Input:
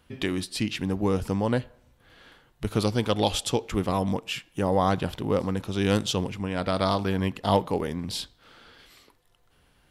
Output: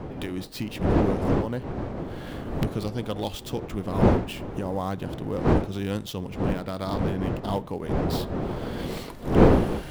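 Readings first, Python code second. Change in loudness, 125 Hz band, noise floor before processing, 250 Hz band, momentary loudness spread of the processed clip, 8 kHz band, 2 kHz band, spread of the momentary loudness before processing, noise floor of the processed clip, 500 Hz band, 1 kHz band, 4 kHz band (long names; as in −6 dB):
0.0 dB, +3.0 dB, −63 dBFS, +2.5 dB, 12 LU, −8.0 dB, −2.0 dB, 6 LU, −39 dBFS, +1.0 dB, −1.5 dB, −7.0 dB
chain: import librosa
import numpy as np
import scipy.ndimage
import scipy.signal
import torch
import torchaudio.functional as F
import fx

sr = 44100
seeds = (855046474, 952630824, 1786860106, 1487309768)

y = fx.dead_time(x, sr, dead_ms=0.052)
y = fx.recorder_agc(y, sr, target_db=-16.5, rise_db_per_s=23.0, max_gain_db=30)
y = fx.dmg_wind(y, sr, seeds[0], corner_hz=470.0, level_db=-21.0)
y = fx.low_shelf(y, sr, hz=490.0, db=4.0)
y = F.gain(torch.from_numpy(y), -8.5).numpy()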